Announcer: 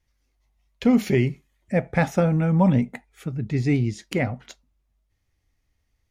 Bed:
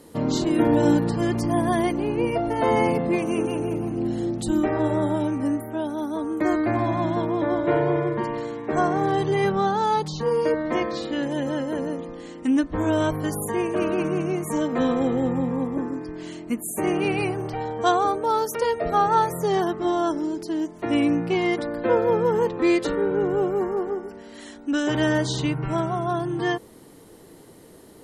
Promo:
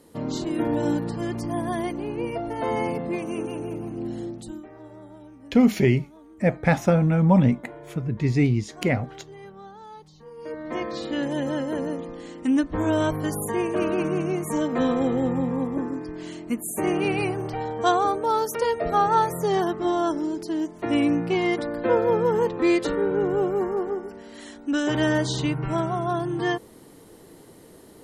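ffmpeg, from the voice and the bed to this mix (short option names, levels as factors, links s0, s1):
-filter_complex "[0:a]adelay=4700,volume=1.12[s0];[1:a]volume=5.96,afade=t=out:st=4.19:d=0.45:silence=0.158489,afade=t=in:st=10.36:d=0.79:silence=0.0891251[s1];[s0][s1]amix=inputs=2:normalize=0"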